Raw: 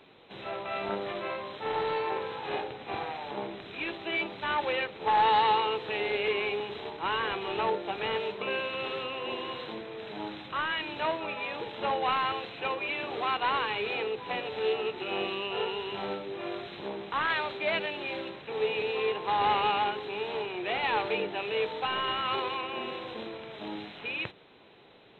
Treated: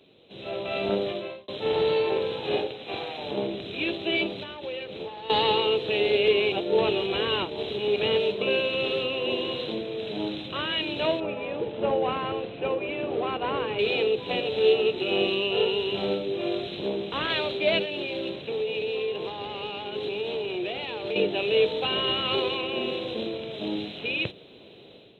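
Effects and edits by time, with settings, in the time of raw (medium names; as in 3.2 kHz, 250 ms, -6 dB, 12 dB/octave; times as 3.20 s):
1.00–1.48 s: fade out
2.67–3.18 s: bass shelf 420 Hz -9.5 dB
4.32–5.30 s: compression, threshold -38 dBFS
6.52–7.96 s: reverse
11.20–13.79 s: low-pass 1.7 kHz
17.82–21.16 s: compression, threshold -34 dBFS
whole clip: level rider gain up to 9 dB; high-pass 48 Hz; high-order bell 1.3 kHz -12 dB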